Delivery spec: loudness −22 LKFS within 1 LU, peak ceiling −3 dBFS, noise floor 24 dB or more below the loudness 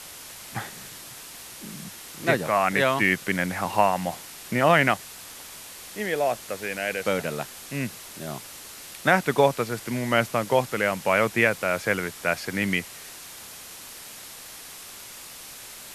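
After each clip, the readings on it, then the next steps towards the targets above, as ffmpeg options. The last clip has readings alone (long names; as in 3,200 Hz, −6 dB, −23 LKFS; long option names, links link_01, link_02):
background noise floor −42 dBFS; target noise floor −49 dBFS; integrated loudness −24.5 LKFS; sample peak −4.0 dBFS; target loudness −22.0 LKFS
→ -af "afftdn=noise_reduction=7:noise_floor=-42"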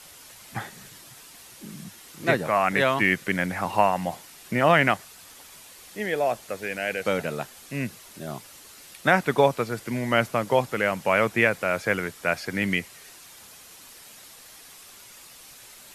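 background noise floor −48 dBFS; target noise floor −49 dBFS
→ -af "afftdn=noise_reduction=6:noise_floor=-48"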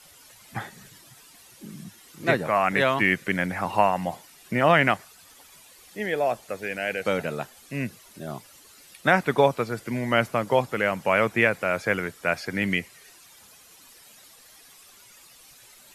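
background noise floor −52 dBFS; integrated loudness −24.5 LKFS; sample peak −4.0 dBFS; target loudness −22.0 LKFS
→ -af "volume=2.5dB,alimiter=limit=-3dB:level=0:latency=1"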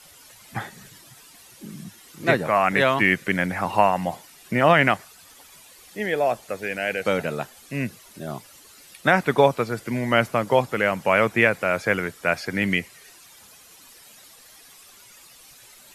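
integrated loudness −22.0 LKFS; sample peak −3.0 dBFS; background noise floor −50 dBFS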